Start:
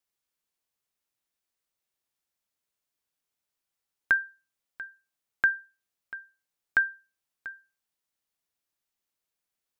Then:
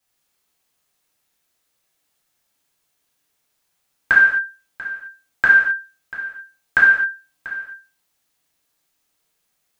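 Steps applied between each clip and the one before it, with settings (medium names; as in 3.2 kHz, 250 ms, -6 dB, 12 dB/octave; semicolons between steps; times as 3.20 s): gated-style reverb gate 290 ms falling, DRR -8 dB; trim +6.5 dB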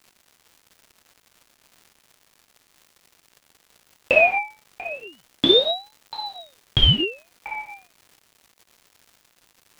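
crackle 410 per s -39 dBFS; ring modulator with a swept carrier 1.6 kHz, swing 55%, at 0.33 Hz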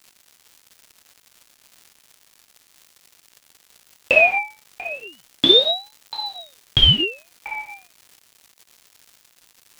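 treble shelf 2.3 kHz +7.5 dB; trim -1 dB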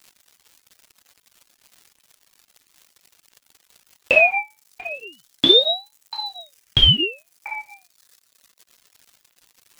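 reverb removal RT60 1.6 s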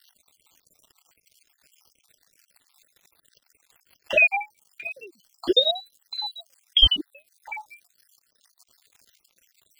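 random holes in the spectrogram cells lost 59%; trim -1 dB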